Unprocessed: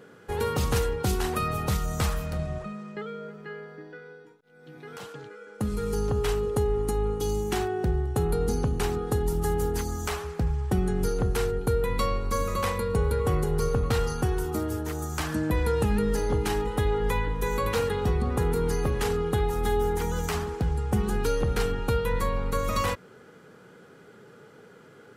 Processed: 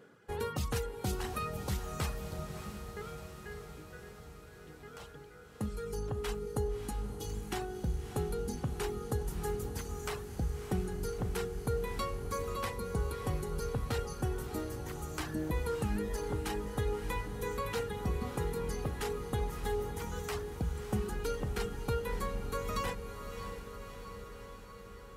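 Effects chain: reverb removal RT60 1.6 s; diffused feedback echo 0.606 s, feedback 69%, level -9 dB; gain -7.5 dB

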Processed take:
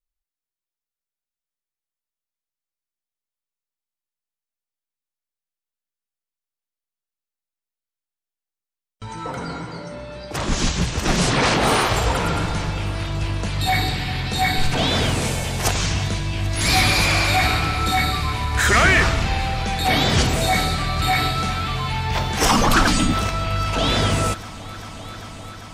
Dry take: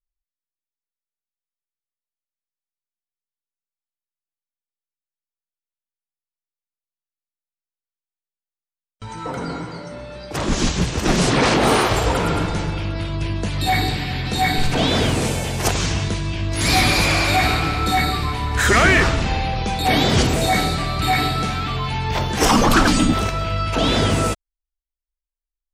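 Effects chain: dynamic EQ 330 Hz, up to -5 dB, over -32 dBFS, Q 0.83; multi-head echo 0.395 s, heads all three, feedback 73%, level -24 dB

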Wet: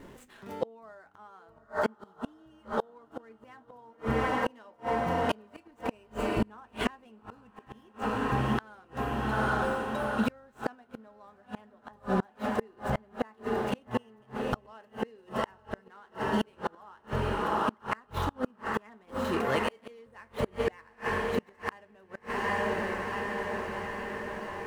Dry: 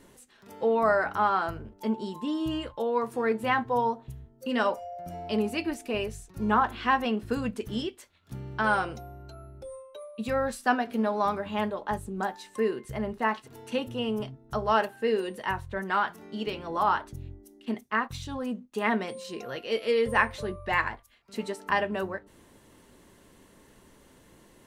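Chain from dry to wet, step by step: median filter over 9 samples; diffused feedback echo 0.813 s, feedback 68%, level -10 dB; flipped gate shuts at -23 dBFS, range -34 dB; gain +7 dB

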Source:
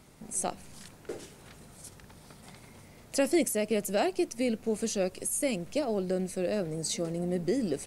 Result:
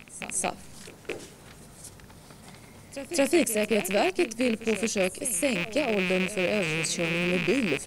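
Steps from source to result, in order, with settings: rattling part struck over -42 dBFS, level -21 dBFS; pre-echo 0.218 s -14 dB; gain +3 dB

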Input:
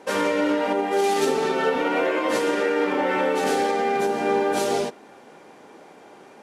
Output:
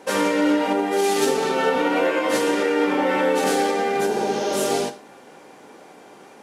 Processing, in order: spectral repair 4.13–4.62, 300–6800 Hz both; high shelf 5800 Hz +6 dB; non-linear reverb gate 0.15 s falling, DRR 9 dB; gain +1 dB

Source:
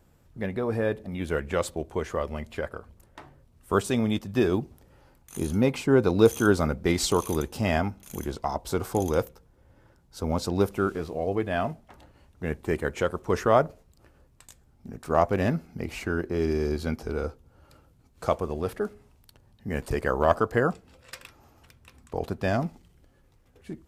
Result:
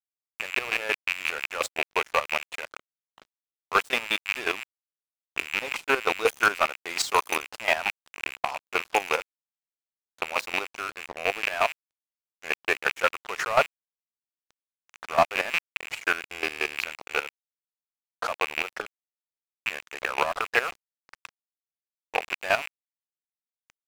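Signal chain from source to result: rattling part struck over -34 dBFS, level -20 dBFS; in parallel at -0.5 dB: compressor 6:1, threshold -31 dBFS, peak gain reduction 17.5 dB; on the sum: HPF 820 Hz 12 dB/oct; overdrive pedal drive 12 dB, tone 1400 Hz, clips at -7 dBFS; high shelf 5800 Hz +7.5 dB; sample leveller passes 2; chopper 5.6 Hz, depth 65%, duty 30%; low-pass opened by the level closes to 1100 Hz, open at -20.5 dBFS; crossover distortion -32.5 dBFS

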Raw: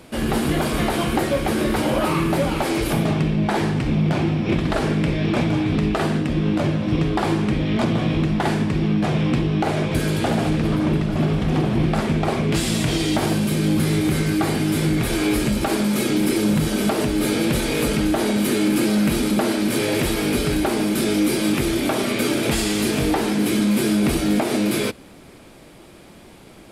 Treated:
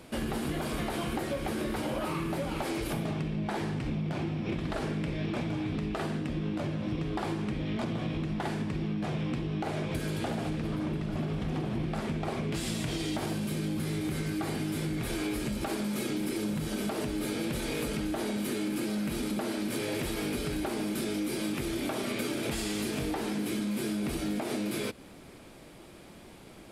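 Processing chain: compressor, threshold -24 dBFS, peak gain reduction 9 dB; gain -5.5 dB

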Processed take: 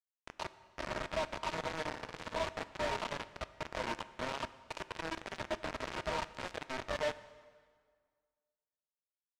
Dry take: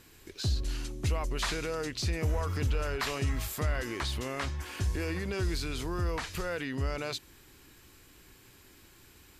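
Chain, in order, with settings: median filter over 25 samples; reverb removal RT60 1.6 s; 4.74–5.32 Chebyshev high-pass 320 Hz, order 6; dynamic EQ 1400 Hz, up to +4 dB, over -57 dBFS, Q 2.3; compressor 3:1, threshold -50 dBFS, peak gain reduction 17.5 dB; limiter -47.5 dBFS, peak gain reduction 11.5 dB; sine folder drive 7 dB, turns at -47.5 dBFS; small resonant body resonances 630/930 Hz, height 18 dB, ringing for 85 ms; bit-crush 7-bit; air absorption 100 m; 1.88–2.34 flutter echo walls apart 9.7 m, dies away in 0.65 s; plate-style reverb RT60 1.8 s, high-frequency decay 0.8×, DRR 14 dB; gain +8.5 dB

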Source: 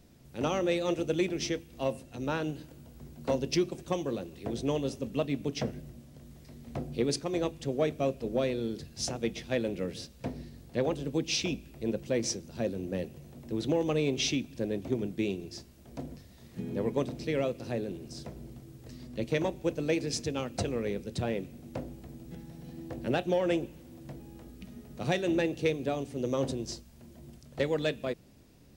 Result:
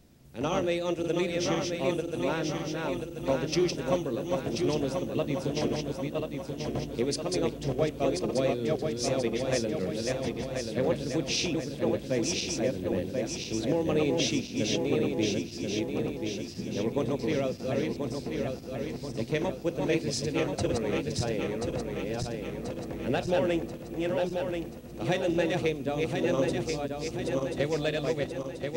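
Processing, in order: regenerating reverse delay 0.517 s, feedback 72%, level -2.5 dB

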